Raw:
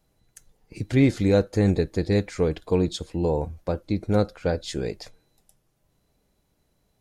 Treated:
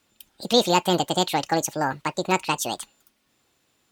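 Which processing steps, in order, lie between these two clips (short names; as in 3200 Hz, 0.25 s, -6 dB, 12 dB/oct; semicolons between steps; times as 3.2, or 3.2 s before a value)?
high shelf 8100 Hz +8 dB; wide varispeed 1.79×; weighting filter D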